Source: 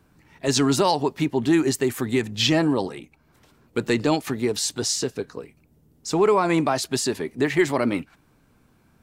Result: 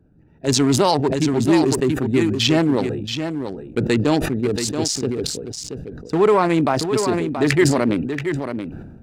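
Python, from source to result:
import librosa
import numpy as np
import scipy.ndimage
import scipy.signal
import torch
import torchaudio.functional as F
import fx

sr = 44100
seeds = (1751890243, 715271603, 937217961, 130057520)

y = fx.wiener(x, sr, points=41)
y = y + 10.0 ** (-8.0 / 20.0) * np.pad(y, (int(679 * sr / 1000.0), 0))[:len(y)]
y = fx.sustainer(y, sr, db_per_s=42.0)
y = y * 10.0 ** (3.5 / 20.0)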